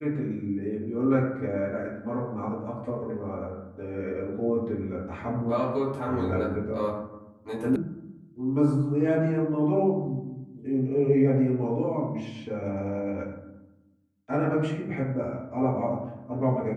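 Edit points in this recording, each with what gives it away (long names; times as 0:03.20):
0:07.76: cut off before it has died away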